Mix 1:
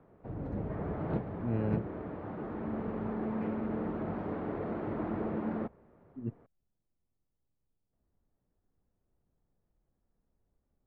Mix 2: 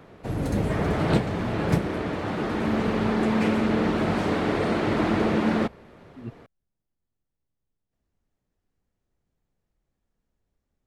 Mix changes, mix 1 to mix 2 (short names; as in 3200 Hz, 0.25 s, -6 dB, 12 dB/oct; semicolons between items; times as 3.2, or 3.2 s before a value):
background +11.5 dB; master: remove LPF 1200 Hz 12 dB/oct